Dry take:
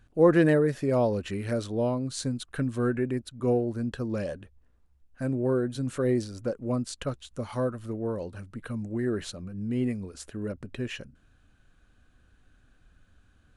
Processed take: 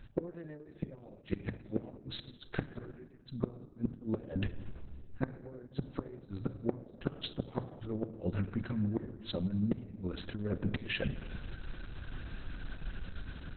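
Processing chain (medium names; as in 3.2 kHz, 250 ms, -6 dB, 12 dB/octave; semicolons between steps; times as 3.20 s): inverted gate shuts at -23 dBFS, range -41 dB; reverse; compression 12:1, threshold -48 dBFS, peak gain reduction 19.5 dB; reverse; peaking EQ 7.9 kHz +8.5 dB 1.5 oct; level rider gain up to 3 dB; bass shelf 460 Hz +4 dB; de-hum 58.94 Hz, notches 2; on a send at -11 dB: reverberation RT60 1.7 s, pre-delay 6 ms; on the sum: trim +12.5 dB; Opus 6 kbps 48 kHz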